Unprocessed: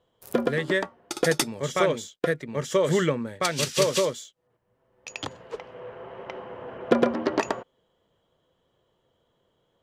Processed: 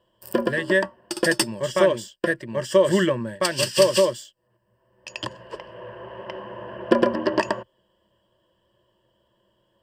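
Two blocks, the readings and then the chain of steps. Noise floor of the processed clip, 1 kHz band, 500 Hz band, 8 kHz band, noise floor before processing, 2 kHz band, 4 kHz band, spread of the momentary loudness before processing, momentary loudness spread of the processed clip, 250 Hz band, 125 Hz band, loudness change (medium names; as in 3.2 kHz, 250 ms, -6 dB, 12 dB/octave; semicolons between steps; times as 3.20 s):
-69 dBFS, +2.0 dB, +4.0 dB, +1.5 dB, -72 dBFS, +4.5 dB, +3.5 dB, 17 LU, 20 LU, +3.0 dB, 0.0 dB, +3.5 dB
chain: rippled EQ curve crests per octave 1.3, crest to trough 13 dB; trim +1 dB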